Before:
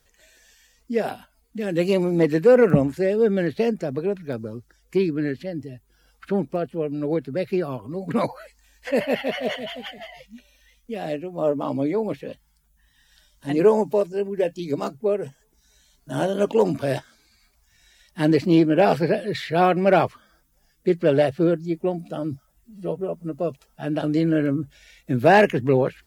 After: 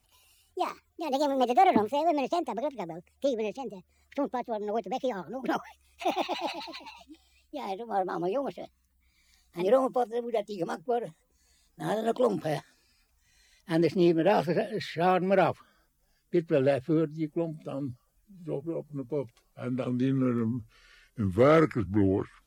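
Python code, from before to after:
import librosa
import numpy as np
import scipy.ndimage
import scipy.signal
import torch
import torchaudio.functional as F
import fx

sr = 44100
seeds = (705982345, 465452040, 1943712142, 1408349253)

y = fx.speed_glide(x, sr, from_pct=159, to_pct=73)
y = y * 10.0 ** (-6.5 / 20.0)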